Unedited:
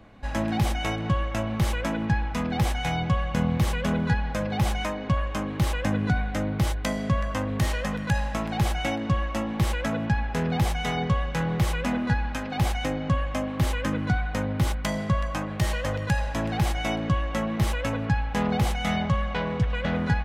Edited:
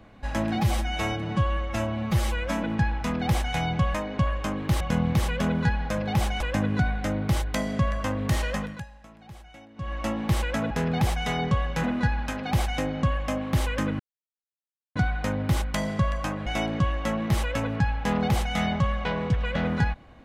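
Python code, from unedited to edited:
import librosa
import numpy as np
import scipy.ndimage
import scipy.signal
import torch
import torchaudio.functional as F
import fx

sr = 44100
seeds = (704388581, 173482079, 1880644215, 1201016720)

y = fx.edit(x, sr, fx.stretch_span(start_s=0.55, length_s=1.39, factor=1.5),
    fx.move(start_s=4.85, length_s=0.86, to_s=3.25),
    fx.fade_down_up(start_s=7.86, length_s=1.5, db=-21.0, fade_s=0.3),
    fx.cut(start_s=10.01, length_s=0.28),
    fx.cut(start_s=11.42, length_s=0.48),
    fx.insert_silence(at_s=14.06, length_s=0.96),
    fx.cut(start_s=15.57, length_s=1.19), tone=tone)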